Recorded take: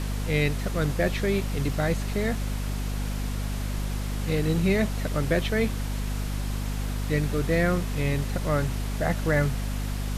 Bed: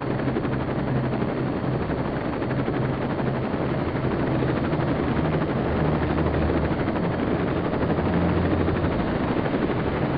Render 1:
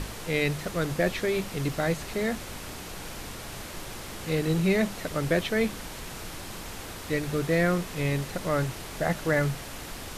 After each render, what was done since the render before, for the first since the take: notches 50/100/150/200/250 Hz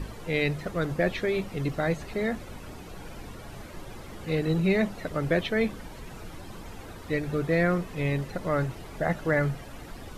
denoiser 12 dB, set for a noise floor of -40 dBFS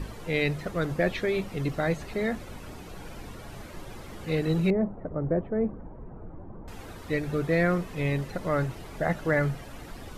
4.7–6.68 Bessel low-pass 750 Hz, order 4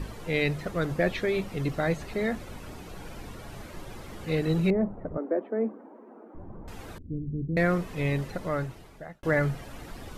5.17–6.35 steep high-pass 220 Hz 72 dB/oct; 6.98–7.57 inverse Chebyshev low-pass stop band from 1300 Hz, stop band 70 dB; 8.26–9.23 fade out linear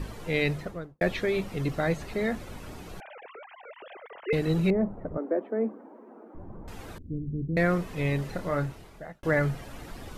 0.5–1.01 studio fade out; 3–4.33 sine-wave speech; 8.22–9.12 doubler 28 ms -7.5 dB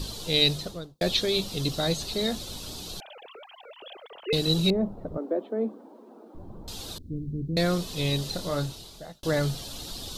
resonant high shelf 2800 Hz +11.5 dB, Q 3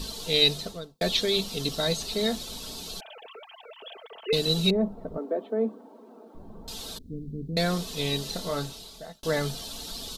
low shelf 250 Hz -4.5 dB; comb 4.5 ms, depth 48%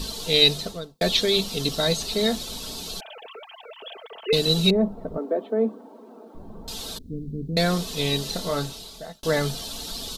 gain +4 dB

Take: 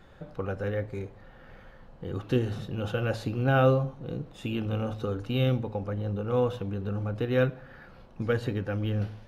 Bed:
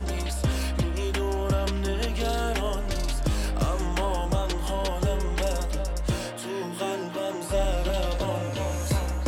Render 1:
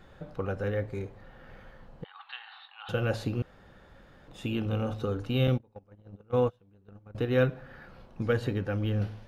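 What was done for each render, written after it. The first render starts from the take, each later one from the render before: 2.04–2.89 Chebyshev band-pass 790–4200 Hz, order 5; 3.42–4.28 room tone; 5.47–7.15 gate -28 dBFS, range -28 dB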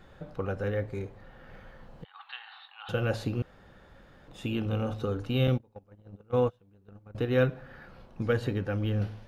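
1.54–2.14 three-band squash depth 70%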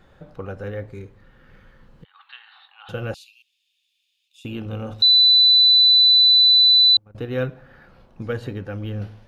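0.92–2.55 bell 700 Hz -11 dB 0.7 oct; 3.14–4.45 Chebyshev high-pass 2500 Hz, order 6; 5.02–6.97 bleep 3990 Hz -10 dBFS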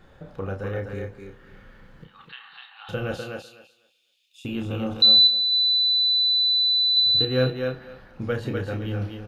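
doubler 31 ms -6 dB; thinning echo 0.25 s, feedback 17%, high-pass 210 Hz, level -4 dB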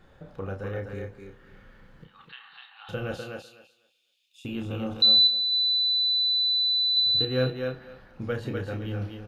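gain -3.5 dB

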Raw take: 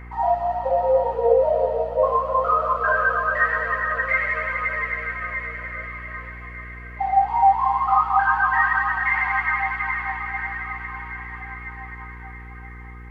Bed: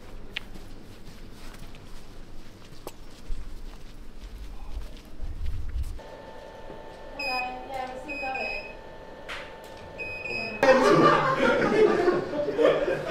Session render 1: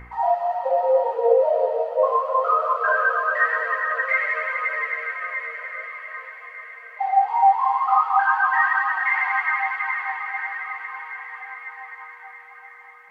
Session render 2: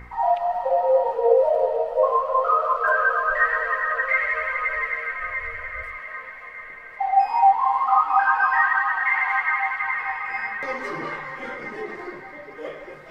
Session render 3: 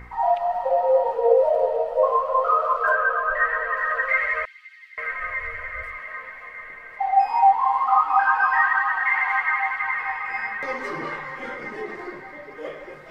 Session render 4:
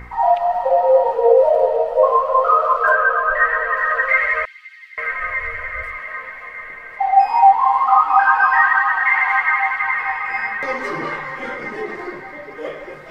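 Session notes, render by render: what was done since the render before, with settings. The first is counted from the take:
de-hum 60 Hz, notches 7
add bed -14 dB
2.95–3.77 air absorption 200 m; 4.45–4.98 ladder high-pass 3000 Hz, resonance 35%
gain +5.5 dB; limiter -2 dBFS, peak gain reduction 1.5 dB

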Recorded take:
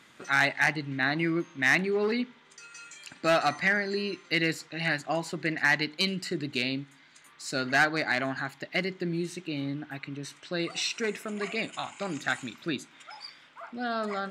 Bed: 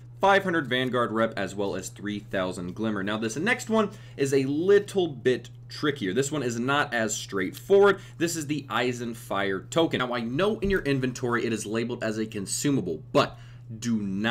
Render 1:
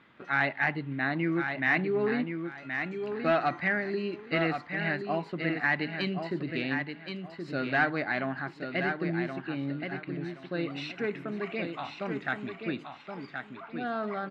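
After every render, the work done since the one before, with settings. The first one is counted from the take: air absorption 390 m; feedback echo 1.074 s, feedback 25%, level -6.5 dB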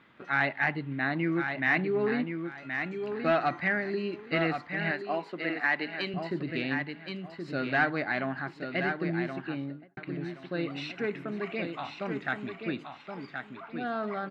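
4.91–6.14 HPF 300 Hz; 9.47–9.97 studio fade out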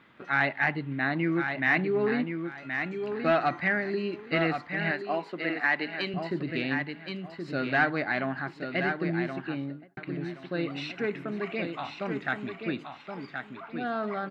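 gain +1.5 dB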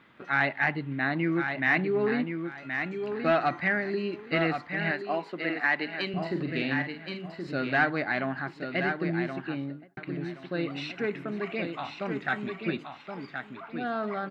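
6.1–7.47 doubler 44 ms -6.5 dB; 12.27–12.77 comb 5.3 ms, depth 59%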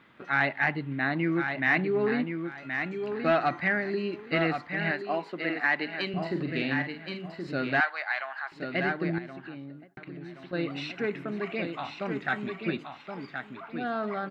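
7.8–8.52 HPF 780 Hz 24 dB/oct; 9.18–10.53 compressor 2.5:1, threshold -41 dBFS

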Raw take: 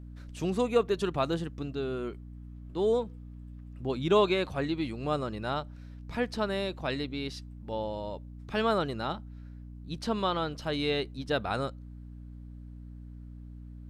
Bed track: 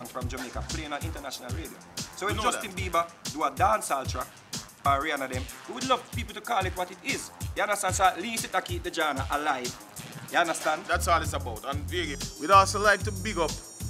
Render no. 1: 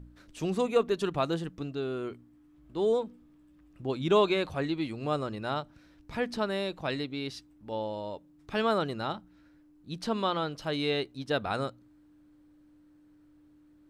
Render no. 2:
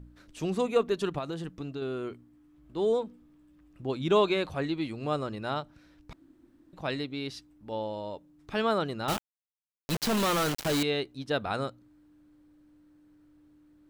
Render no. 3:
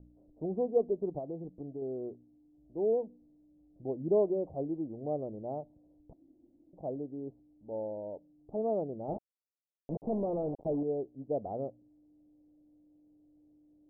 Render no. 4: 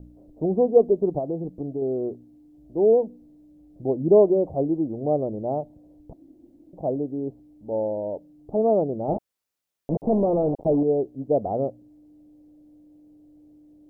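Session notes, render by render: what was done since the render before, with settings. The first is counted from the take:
de-hum 60 Hz, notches 4
1.18–1.82 compressor 4:1, threshold -31 dBFS; 6.13–6.73 room tone; 9.08–10.83 companded quantiser 2-bit
steep low-pass 730 Hz 48 dB/oct; low shelf 260 Hz -9.5 dB
gain +11.5 dB

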